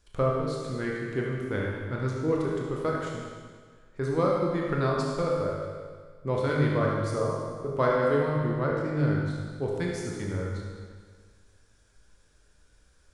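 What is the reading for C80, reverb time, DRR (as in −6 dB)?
1.5 dB, 1.6 s, −3.0 dB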